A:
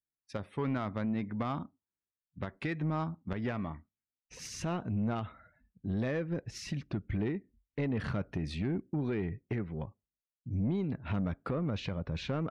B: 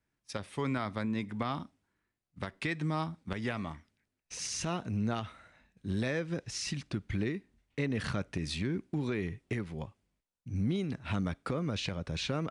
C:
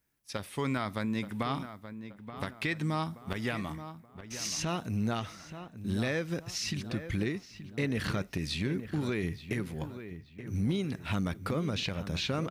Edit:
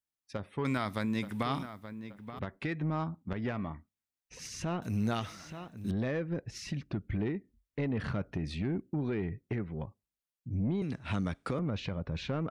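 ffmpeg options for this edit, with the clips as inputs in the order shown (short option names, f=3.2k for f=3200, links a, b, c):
-filter_complex "[2:a]asplit=2[a][b];[0:a]asplit=4[c][d][e][f];[c]atrim=end=0.652[g];[a]atrim=start=0.648:end=2.392[h];[d]atrim=start=2.388:end=4.822[i];[b]atrim=start=4.818:end=5.912[j];[e]atrim=start=5.908:end=10.822[k];[1:a]atrim=start=10.818:end=11.592[l];[f]atrim=start=11.588[m];[g][h]acrossfade=d=0.004:c1=hsin:c2=hsin[n];[n][i]acrossfade=d=0.004:c1=hsin:c2=hsin[o];[o][j]acrossfade=d=0.004:c1=hsin:c2=hsin[p];[p][k]acrossfade=d=0.004:c1=hsin:c2=hsin[q];[q][l]acrossfade=d=0.004:c1=hsin:c2=hsin[r];[r][m]acrossfade=d=0.004:c1=hsin:c2=hsin"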